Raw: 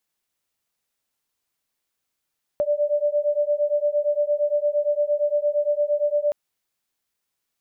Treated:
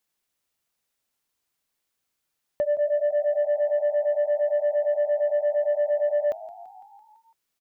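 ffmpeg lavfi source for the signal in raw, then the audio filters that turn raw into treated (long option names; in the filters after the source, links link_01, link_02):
-f lavfi -i "aevalsrc='0.0794*(sin(2*PI*584*t)+sin(2*PI*592.7*t))':duration=3.72:sample_rate=44100"
-filter_complex "[0:a]asplit=7[link_01][link_02][link_03][link_04][link_05][link_06][link_07];[link_02]adelay=168,afreqshift=53,volume=-19dB[link_08];[link_03]adelay=336,afreqshift=106,volume=-22.9dB[link_09];[link_04]adelay=504,afreqshift=159,volume=-26.8dB[link_10];[link_05]adelay=672,afreqshift=212,volume=-30.6dB[link_11];[link_06]adelay=840,afreqshift=265,volume=-34.5dB[link_12];[link_07]adelay=1008,afreqshift=318,volume=-38.4dB[link_13];[link_01][link_08][link_09][link_10][link_11][link_12][link_13]amix=inputs=7:normalize=0,asoftclip=type=tanh:threshold=-16dB"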